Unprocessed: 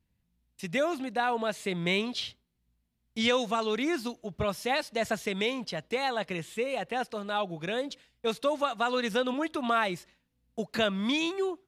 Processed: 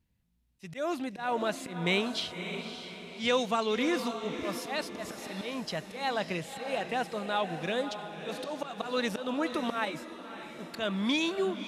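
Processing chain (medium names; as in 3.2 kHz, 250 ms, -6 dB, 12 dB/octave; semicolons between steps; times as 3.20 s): slow attack 168 ms; echo that smears into a reverb 577 ms, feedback 46%, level -8.5 dB; 9.85–10.59 s: three-phase chorus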